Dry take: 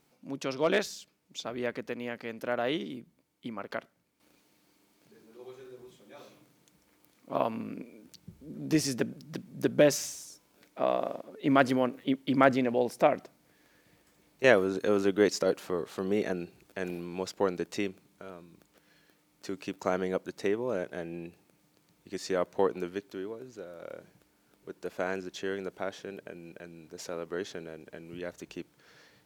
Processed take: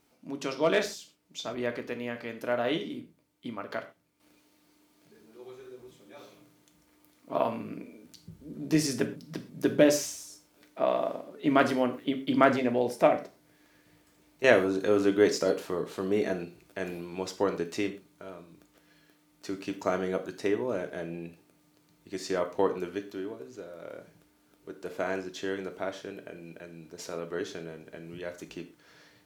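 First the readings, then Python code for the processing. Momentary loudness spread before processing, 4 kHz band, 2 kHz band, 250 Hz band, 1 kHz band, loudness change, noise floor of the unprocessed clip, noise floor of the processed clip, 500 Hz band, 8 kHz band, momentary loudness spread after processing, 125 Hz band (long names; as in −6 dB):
22 LU, +1.0 dB, +1.0 dB, +1.5 dB, +1.0 dB, +1.5 dB, −69 dBFS, −66 dBFS, +1.0 dB, +1.0 dB, 22 LU, 0.0 dB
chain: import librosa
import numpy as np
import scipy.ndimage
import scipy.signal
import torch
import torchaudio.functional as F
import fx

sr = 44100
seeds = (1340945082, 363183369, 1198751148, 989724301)

y = fx.rev_gated(x, sr, seeds[0], gate_ms=150, shape='falling', drr_db=5.5)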